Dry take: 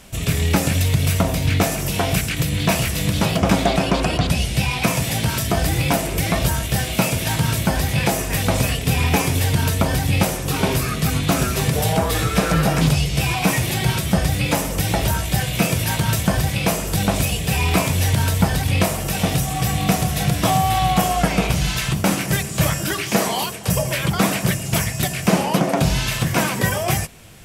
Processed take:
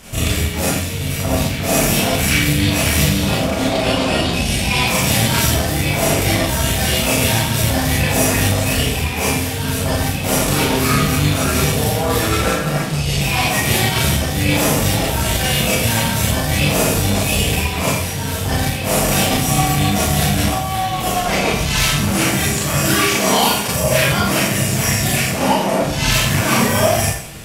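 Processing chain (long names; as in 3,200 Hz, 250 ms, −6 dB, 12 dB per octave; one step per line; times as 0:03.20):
compressor whose output falls as the input rises −23 dBFS, ratio −1
four-comb reverb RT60 0.61 s, combs from 27 ms, DRR −7 dB
harmonic generator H 6 −28 dB, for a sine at −0.5 dBFS
level −1 dB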